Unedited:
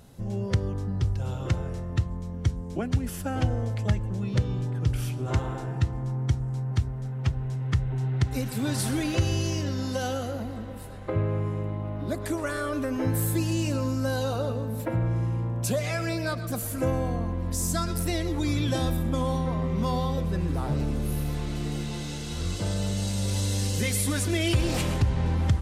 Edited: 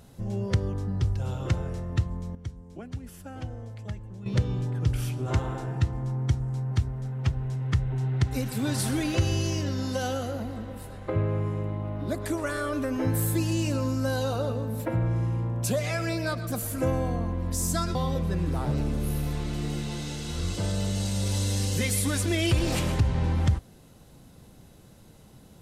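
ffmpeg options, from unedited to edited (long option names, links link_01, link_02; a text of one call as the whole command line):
ffmpeg -i in.wav -filter_complex "[0:a]asplit=4[link_01][link_02][link_03][link_04];[link_01]atrim=end=2.352[link_05];[link_02]atrim=start=2.348:end=4.262,asetpts=PTS-STARTPTS,volume=-11dB[link_06];[link_03]atrim=start=4.258:end=17.952[link_07];[link_04]atrim=start=19.968[link_08];[link_05][link_06]acrossfade=duration=0.004:curve1=hsin:curve2=hsin[link_09];[link_09][link_07]acrossfade=duration=0.004:curve1=hsin:curve2=hsin[link_10];[link_10][link_08]acrossfade=duration=0.004:curve1=hsin:curve2=hsin" out.wav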